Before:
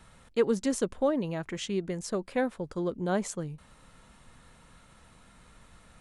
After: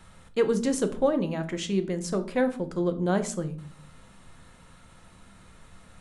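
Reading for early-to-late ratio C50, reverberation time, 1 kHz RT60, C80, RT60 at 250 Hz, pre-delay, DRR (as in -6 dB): 14.5 dB, 0.50 s, 0.40 s, 19.0 dB, 0.80 s, 5 ms, 8.0 dB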